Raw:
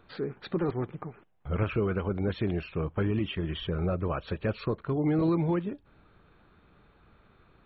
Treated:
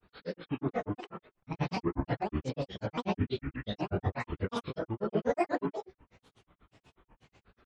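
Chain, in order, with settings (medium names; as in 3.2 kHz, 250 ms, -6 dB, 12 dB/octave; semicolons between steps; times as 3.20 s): sawtooth pitch modulation +7 st, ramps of 395 ms; gated-style reverb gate 140 ms rising, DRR -3.5 dB; granulator, grains 8.2 per s, spray 33 ms, pitch spread up and down by 12 st; trim -3 dB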